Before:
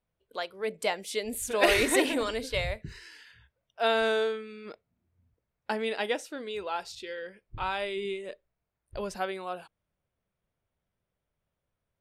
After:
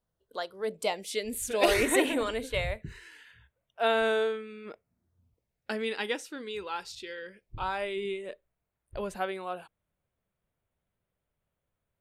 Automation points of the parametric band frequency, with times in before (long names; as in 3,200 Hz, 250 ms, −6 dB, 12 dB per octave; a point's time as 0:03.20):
parametric band −14 dB 0.39 octaves
0:00.70 2,400 Hz
0:01.42 590 Hz
0:01.87 5,000 Hz
0:04.65 5,000 Hz
0:05.92 650 Hz
0:07.26 650 Hz
0:07.92 5,300 Hz